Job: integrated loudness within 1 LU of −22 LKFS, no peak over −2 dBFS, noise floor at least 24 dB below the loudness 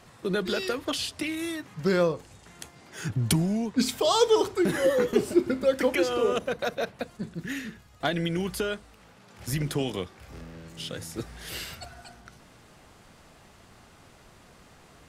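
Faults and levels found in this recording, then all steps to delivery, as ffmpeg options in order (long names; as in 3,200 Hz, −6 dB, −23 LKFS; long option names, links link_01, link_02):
integrated loudness −28.0 LKFS; sample peak −9.5 dBFS; target loudness −22.0 LKFS
→ -af "volume=6dB"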